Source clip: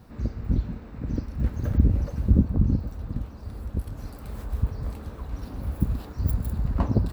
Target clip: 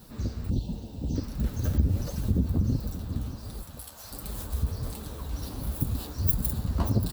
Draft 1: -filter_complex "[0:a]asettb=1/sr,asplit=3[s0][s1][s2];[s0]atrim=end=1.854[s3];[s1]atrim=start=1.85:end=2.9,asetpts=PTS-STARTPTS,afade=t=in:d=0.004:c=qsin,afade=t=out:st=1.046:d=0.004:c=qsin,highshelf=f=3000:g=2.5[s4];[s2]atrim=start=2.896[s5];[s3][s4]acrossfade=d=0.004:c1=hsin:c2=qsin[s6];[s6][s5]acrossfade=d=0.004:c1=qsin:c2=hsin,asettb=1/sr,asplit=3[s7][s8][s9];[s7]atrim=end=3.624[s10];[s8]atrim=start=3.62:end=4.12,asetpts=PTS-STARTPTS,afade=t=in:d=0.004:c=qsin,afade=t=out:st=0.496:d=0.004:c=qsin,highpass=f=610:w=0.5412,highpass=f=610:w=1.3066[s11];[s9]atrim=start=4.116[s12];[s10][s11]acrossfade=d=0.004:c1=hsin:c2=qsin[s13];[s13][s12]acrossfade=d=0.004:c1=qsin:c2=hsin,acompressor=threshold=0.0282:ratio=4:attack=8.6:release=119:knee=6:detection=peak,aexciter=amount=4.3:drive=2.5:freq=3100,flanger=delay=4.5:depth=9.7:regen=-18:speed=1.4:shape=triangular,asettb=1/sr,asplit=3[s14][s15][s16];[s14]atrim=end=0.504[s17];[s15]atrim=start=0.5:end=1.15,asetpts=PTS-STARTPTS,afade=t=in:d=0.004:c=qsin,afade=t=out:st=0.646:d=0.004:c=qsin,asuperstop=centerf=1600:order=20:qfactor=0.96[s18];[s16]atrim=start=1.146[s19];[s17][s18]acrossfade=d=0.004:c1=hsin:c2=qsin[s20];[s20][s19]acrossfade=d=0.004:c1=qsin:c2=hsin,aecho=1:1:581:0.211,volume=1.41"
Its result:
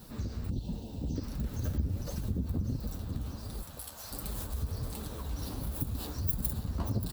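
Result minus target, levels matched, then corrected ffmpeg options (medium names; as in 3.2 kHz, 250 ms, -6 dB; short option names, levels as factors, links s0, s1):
compression: peak gain reduction +8 dB
-filter_complex "[0:a]asettb=1/sr,asplit=3[s0][s1][s2];[s0]atrim=end=1.854[s3];[s1]atrim=start=1.85:end=2.9,asetpts=PTS-STARTPTS,afade=t=in:d=0.004:c=qsin,afade=t=out:st=1.046:d=0.004:c=qsin,highshelf=f=3000:g=2.5[s4];[s2]atrim=start=2.896[s5];[s3][s4]acrossfade=d=0.004:c1=hsin:c2=qsin[s6];[s6][s5]acrossfade=d=0.004:c1=qsin:c2=hsin,asettb=1/sr,asplit=3[s7][s8][s9];[s7]atrim=end=3.624[s10];[s8]atrim=start=3.62:end=4.12,asetpts=PTS-STARTPTS,afade=t=in:d=0.004:c=qsin,afade=t=out:st=0.496:d=0.004:c=qsin,highpass=f=610:w=0.5412,highpass=f=610:w=1.3066[s11];[s9]atrim=start=4.116[s12];[s10][s11]acrossfade=d=0.004:c1=hsin:c2=qsin[s13];[s13][s12]acrossfade=d=0.004:c1=qsin:c2=hsin,acompressor=threshold=0.1:ratio=4:attack=8.6:release=119:knee=6:detection=peak,aexciter=amount=4.3:drive=2.5:freq=3100,flanger=delay=4.5:depth=9.7:regen=-18:speed=1.4:shape=triangular,asettb=1/sr,asplit=3[s14][s15][s16];[s14]atrim=end=0.504[s17];[s15]atrim=start=0.5:end=1.15,asetpts=PTS-STARTPTS,afade=t=in:d=0.004:c=qsin,afade=t=out:st=0.646:d=0.004:c=qsin,asuperstop=centerf=1600:order=20:qfactor=0.96[s18];[s16]atrim=start=1.146[s19];[s17][s18]acrossfade=d=0.004:c1=hsin:c2=qsin[s20];[s20][s19]acrossfade=d=0.004:c1=qsin:c2=hsin,aecho=1:1:581:0.211,volume=1.41"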